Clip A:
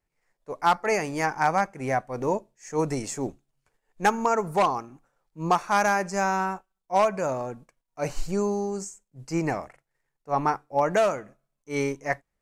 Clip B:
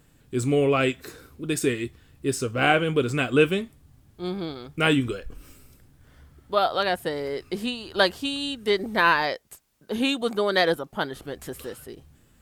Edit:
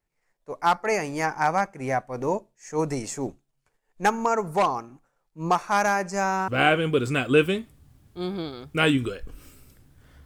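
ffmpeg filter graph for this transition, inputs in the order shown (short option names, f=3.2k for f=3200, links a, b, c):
-filter_complex "[0:a]apad=whole_dur=10.25,atrim=end=10.25,atrim=end=6.482[a];[1:a]atrim=start=2.508:end=6.28[b];[a][b]acrossfade=d=0.004:c1=hsin:c2=hsin"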